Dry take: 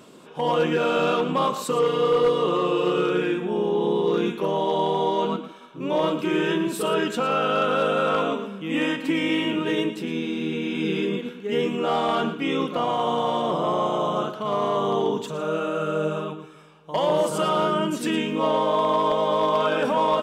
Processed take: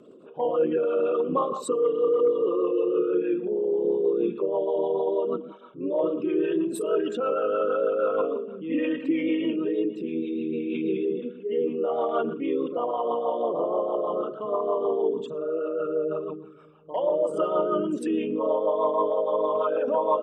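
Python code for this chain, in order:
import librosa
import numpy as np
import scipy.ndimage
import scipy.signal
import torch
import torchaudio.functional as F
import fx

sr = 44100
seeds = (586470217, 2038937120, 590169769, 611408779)

y = fx.envelope_sharpen(x, sr, power=2.0)
y = fx.hum_notches(y, sr, base_hz=50, count=4)
y = fx.rotary(y, sr, hz=6.3)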